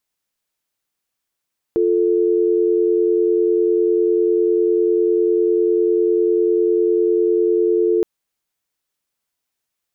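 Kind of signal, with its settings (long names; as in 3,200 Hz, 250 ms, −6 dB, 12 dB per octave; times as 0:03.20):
call progress tone dial tone, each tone −16 dBFS 6.27 s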